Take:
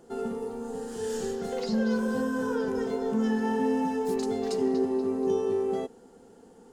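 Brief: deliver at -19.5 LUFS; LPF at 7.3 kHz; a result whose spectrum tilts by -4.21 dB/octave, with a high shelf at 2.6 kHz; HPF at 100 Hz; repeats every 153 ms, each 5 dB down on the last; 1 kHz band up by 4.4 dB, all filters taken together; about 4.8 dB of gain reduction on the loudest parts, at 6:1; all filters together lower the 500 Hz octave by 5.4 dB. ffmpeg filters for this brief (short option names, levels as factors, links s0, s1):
-af "highpass=100,lowpass=7300,equalizer=f=500:t=o:g=-8.5,equalizer=f=1000:t=o:g=7,highshelf=f=2600:g=8,acompressor=threshold=0.0355:ratio=6,aecho=1:1:153|306|459|612|765|918|1071:0.562|0.315|0.176|0.0988|0.0553|0.031|0.0173,volume=3.76"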